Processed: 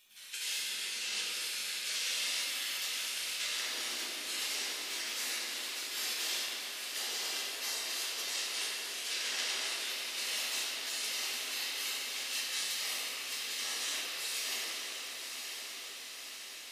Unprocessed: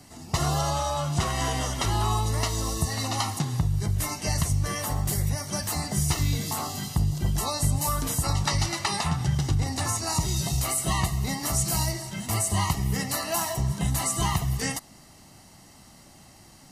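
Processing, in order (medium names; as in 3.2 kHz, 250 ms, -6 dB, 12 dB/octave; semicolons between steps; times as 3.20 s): spectral gate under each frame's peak -30 dB weak; frequency weighting D; compression 1.5:1, threshold -54 dBFS, peak gain reduction 9 dB; crackle 450 per s -63 dBFS; echo that smears into a reverb 1019 ms, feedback 65%, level -6 dB; simulated room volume 210 m³, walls hard, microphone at 1.3 m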